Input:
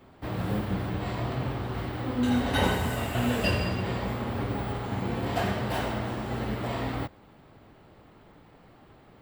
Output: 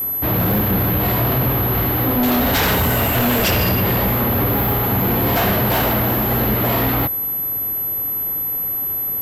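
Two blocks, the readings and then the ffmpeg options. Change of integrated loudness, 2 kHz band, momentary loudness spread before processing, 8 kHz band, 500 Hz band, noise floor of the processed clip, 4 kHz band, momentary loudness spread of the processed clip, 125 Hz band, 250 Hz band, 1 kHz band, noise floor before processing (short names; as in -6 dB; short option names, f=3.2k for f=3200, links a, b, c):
+12.5 dB, +11.0 dB, 7 LU, +15.0 dB, +11.0 dB, -22 dBFS, +11.0 dB, 4 LU, +11.0 dB, +10.0 dB, +11.5 dB, -55 dBFS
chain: -af "aeval=exprs='0.282*sin(PI/2*4.47*val(0)/0.282)':c=same,aeval=exprs='val(0)+0.126*sin(2*PI*12000*n/s)':c=same,acontrast=71,volume=-8dB"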